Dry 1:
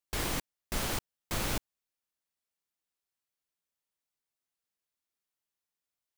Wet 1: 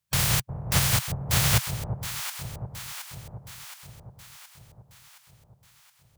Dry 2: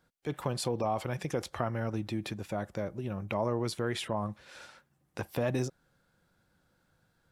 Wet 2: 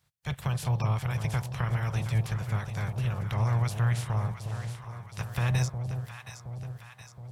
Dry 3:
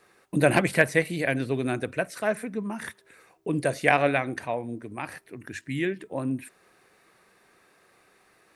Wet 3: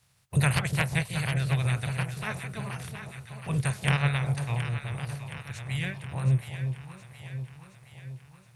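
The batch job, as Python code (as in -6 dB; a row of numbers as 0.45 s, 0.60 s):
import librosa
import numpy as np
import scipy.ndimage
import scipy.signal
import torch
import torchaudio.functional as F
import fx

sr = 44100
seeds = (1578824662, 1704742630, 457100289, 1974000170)

y = fx.spec_clip(x, sr, under_db=23)
y = scipy.signal.sosfilt(scipy.signal.butter(2, 48.0, 'highpass', fs=sr, output='sos'), y)
y = fx.low_shelf_res(y, sr, hz=190.0, db=13.0, q=3.0)
y = fx.echo_alternate(y, sr, ms=360, hz=820.0, feedback_pct=75, wet_db=-7)
y = y * 10.0 ** (-30 / 20.0) / np.sqrt(np.mean(np.square(y)))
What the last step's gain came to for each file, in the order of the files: +7.5 dB, -4.0 dB, -8.5 dB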